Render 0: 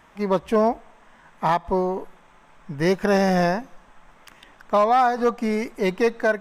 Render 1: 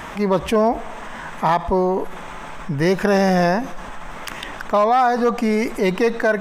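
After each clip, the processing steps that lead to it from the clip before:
envelope flattener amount 50%
level +1.5 dB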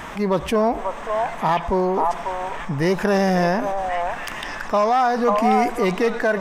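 in parallel at −10.5 dB: soft clipping −23 dBFS, distortion −6 dB
on the sum: echo through a band-pass that steps 542 ms, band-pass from 860 Hz, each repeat 1.4 octaves, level −0.5 dB
level −3 dB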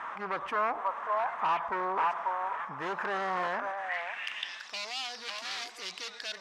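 tape wow and flutter 24 cents
wave folding −16.5 dBFS
band-pass filter sweep 1,200 Hz → 4,600 Hz, 0:03.48–0:04.77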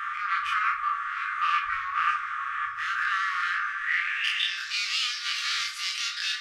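every bin's largest magnitude spread in time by 60 ms
on a send at −2.5 dB: convolution reverb RT60 0.60 s, pre-delay 6 ms
on the sum: brick-wall band-stop 120–1,100 Hz
level +4 dB

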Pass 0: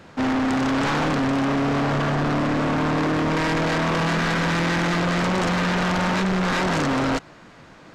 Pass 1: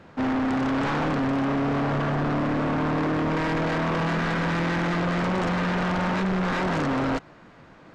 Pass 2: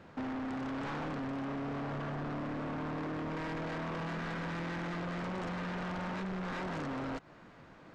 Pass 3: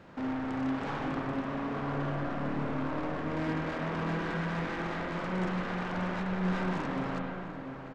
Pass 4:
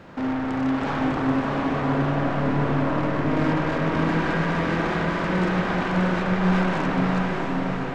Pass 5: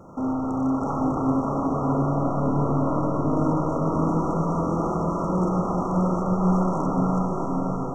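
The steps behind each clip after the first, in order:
high-shelf EQ 4,000 Hz −11.5 dB; level −2.5 dB
downward compressor 5 to 1, threshold −32 dBFS, peak gain reduction 8 dB; level −5.5 dB
slap from a distant wall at 120 metres, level −8 dB; spring reverb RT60 1.9 s, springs 38/49/54 ms, chirp 70 ms, DRR 0.5 dB; level +1 dB
feedback delay with all-pass diffusion 653 ms, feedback 41%, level −3 dB; level +8 dB
linear-phase brick-wall band-stop 1,400–5,400 Hz

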